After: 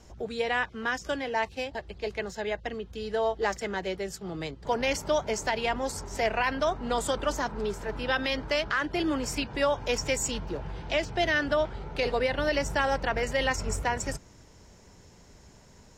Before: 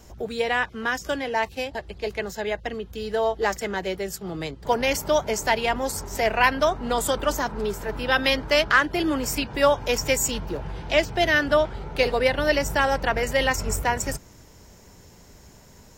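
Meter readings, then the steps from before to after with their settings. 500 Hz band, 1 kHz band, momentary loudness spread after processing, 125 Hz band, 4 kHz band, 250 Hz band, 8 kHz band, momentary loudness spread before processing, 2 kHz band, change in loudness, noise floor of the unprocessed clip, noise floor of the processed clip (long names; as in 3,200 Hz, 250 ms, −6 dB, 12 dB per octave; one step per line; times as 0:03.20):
−5.0 dB, −5.5 dB, 9 LU, −4.5 dB, −5.5 dB, −4.5 dB, −6.0 dB, 11 LU, −6.0 dB, −5.5 dB, −50 dBFS, −54 dBFS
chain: low-pass filter 8,100 Hz 12 dB per octave
brickwall limiter −12.5 dBFS, peak gain reduction 8 dB
level −4 dB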